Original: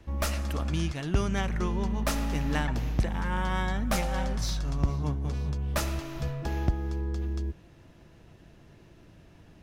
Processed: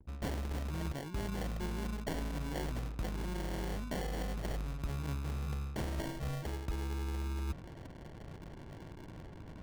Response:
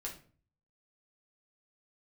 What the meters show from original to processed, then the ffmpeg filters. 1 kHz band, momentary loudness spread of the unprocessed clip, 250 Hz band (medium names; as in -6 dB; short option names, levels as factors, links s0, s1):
-10.0 dB, 4 LU, -8.0 dB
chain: -af "aemphasis=mode=production:type=50fm,acrusher=samples=35:mix=1:aa=0.000001,areverse,acompressor=threshold=0.01:ratio=10,areverse,anlmdn=0.0000398,volume=1.88"